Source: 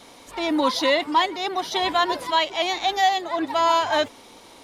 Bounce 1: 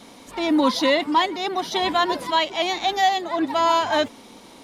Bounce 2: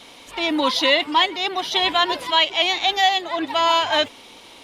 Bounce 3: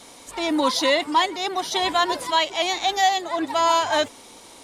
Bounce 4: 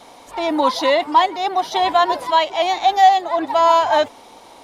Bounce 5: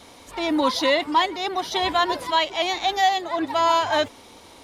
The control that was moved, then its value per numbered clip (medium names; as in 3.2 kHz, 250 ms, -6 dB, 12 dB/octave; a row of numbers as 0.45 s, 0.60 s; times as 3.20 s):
peaking EQ, frequency: 210 Hz, 2.9 kHz, 8.3 kHz, 780 Hz, 74 Hz